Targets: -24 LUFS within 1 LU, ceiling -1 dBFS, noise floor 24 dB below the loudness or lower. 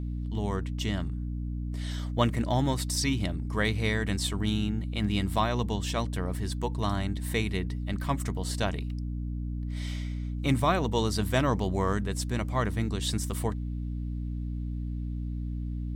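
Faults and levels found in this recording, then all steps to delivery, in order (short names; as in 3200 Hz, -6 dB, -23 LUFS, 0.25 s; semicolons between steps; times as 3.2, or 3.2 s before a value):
hum 60 Hz; harmonics up to 300 Hz; hum level -30 dBFS; loudness -30.5 LUFS; peak -11.0 dBFS; loudness target -24.0 LUFS
-> notches 60/120/180/240/300 Hz; gain +6.5 dB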